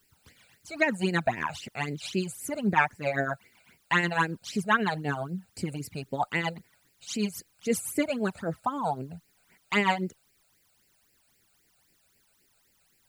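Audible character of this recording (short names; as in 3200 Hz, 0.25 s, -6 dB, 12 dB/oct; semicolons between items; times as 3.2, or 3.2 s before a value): tremolo triangle 7.9 Hz, depth 65%; a quantiser's noise floor 12-bit, dither triangular; phasing stages 12, 3.8 Hz, lowest notch 310–1200 Hz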